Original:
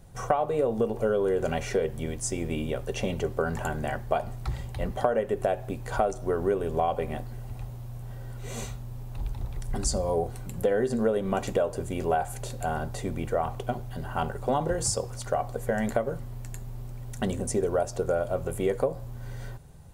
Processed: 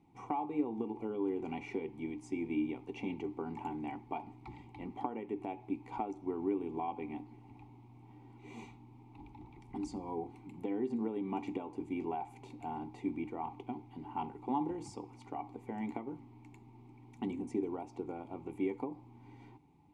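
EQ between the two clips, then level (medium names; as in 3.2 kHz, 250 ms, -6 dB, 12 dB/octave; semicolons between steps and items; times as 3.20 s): vowel filter u; +4.5 dB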